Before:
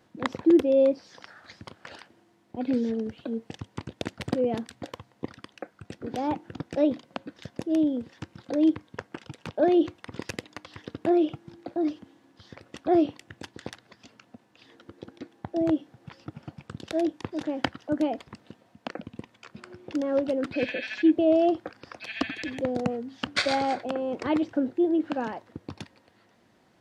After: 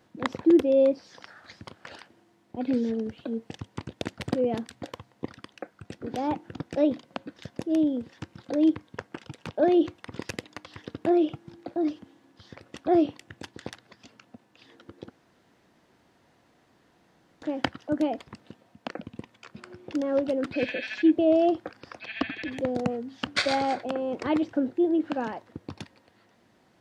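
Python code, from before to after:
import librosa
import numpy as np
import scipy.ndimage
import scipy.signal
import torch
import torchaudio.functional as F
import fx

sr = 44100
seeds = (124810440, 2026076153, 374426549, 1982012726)

y = fx.lowpass(x, sr, hz=3700.0, slope=12, at=(22.0, 22.5), fade=0.02)
y = fx.edit(y, sr, fx.room_tone_fill(start_s=15.1, length_s=2.32), tone=tone)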